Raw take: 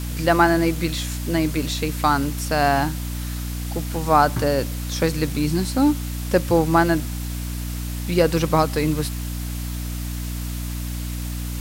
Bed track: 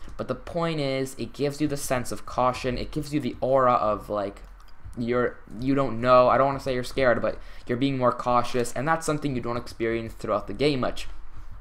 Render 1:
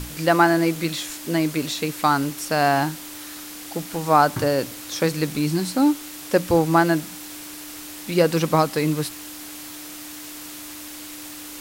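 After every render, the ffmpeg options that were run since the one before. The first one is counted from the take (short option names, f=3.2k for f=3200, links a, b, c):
-af "bandreject=f=60:t=h:w=6,bandreject=f=120:t=h:w=6,bandreject=f=180:t=h:w=6,bandreject=f=240:t=h:w=6"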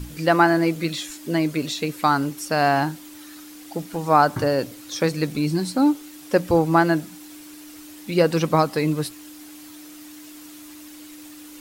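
-af "afftdn=nr=9:nf=-37"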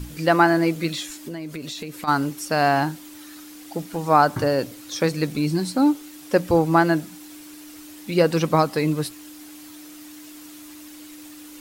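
-filter_complex "[0:a]asplit=3[a][b][c];[a]afade=t=out:st=1.15:d=0.02[d];[b]acompressor=threshold=-29dB:ratio=6:attack=3.2:release=140:knee=1:detection=peak,afade=t=in:st=1.15:d=0.02,afade=t=out:st=2.07:d=0.02[e];[c]afade=t=in:st=2.07:d=0.02[f];[d][e][f]amix=inputs=3:normalize=0"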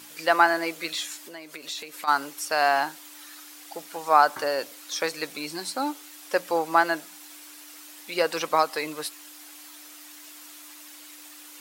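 -af "highpass=670"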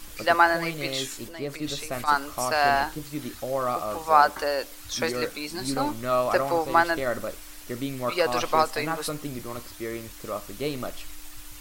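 -filter_complex "[1:a]volume=-7dB[a];[0:a][a]amix=inputs=2:normalize=0"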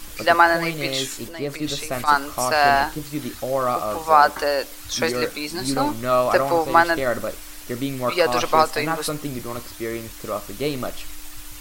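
-af "volume=5dB,alimiter=limit=-2dB:level=0:latency=1"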